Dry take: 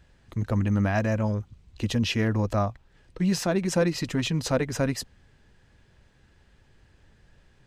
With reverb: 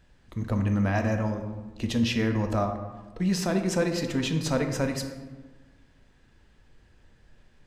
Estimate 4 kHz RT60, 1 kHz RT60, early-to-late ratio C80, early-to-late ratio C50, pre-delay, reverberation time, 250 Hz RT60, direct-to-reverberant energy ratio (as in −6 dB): 0.70 s, 1.3 s, 9.0 dB, 7.5 dB, 3 ms, 1.3 s, 1.7 s, 4.5 dB